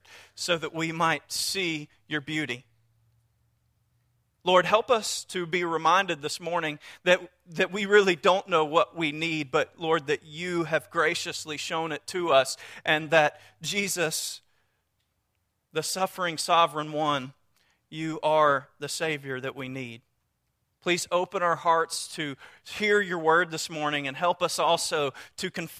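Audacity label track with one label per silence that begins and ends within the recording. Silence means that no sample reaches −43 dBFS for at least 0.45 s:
2.600000	4.450000	silence
14.380000	15.750000	silence
17.310000	17.920000	silence
19.960000	20.860000	silence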